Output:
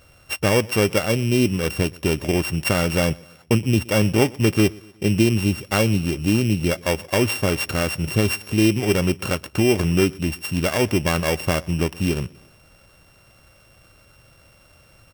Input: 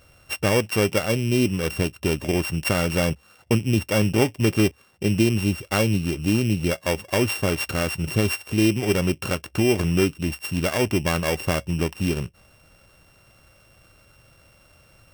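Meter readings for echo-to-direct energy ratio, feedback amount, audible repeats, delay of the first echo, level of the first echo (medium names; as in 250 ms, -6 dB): -23.0 dB, 48%, 2, 121 ms, -24.0 dB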